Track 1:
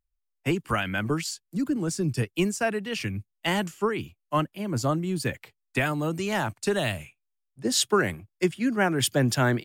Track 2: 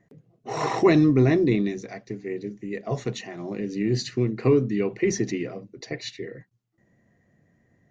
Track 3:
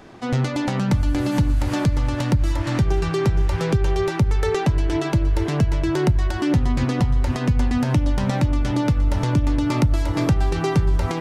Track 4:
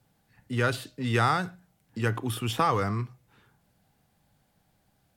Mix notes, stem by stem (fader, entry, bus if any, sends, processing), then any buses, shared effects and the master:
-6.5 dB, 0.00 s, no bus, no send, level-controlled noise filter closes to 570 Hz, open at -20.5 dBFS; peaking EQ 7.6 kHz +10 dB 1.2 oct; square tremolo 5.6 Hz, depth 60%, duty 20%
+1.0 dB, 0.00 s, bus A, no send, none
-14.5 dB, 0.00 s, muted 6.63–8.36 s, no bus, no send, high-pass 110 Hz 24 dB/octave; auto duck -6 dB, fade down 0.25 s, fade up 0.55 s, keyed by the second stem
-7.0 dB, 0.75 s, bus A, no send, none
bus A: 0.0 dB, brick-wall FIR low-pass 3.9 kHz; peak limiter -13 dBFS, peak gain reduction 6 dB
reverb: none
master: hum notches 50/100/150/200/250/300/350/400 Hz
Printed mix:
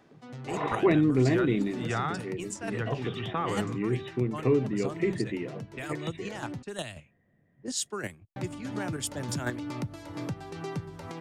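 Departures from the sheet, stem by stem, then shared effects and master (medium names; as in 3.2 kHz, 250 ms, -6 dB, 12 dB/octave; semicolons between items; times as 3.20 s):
stem 2 +1.0 dB -> -5.0 dB; master: missing hum notches 50/100/150/200/250/300/350/400 Hz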